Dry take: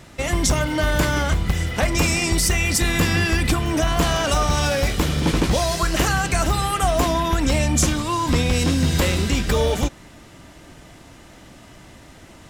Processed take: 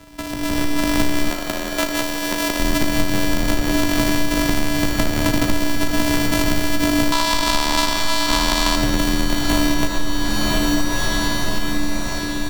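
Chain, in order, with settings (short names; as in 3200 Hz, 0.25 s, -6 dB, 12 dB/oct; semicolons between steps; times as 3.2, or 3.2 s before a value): sample sorter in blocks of 128 samples; frequency shift -51 Hz; 7.12–8.76 graphic EQ 125/500/1000/4000/8000 Hz -11/-5/+12/+11/+5 dB; diffused feedback echo 1.006 s, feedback 46%, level -10 dB; digital reverb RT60 0.87 s, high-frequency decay 0.55×, pre-delay 35 ms, DRR 6.5 dB; compressor, threshold -28 dBFS, peak gain reduction 17.5 dB; 1.3–2.6 tone controls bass -13 dB, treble 0 dB; AGC gain up to 15 dB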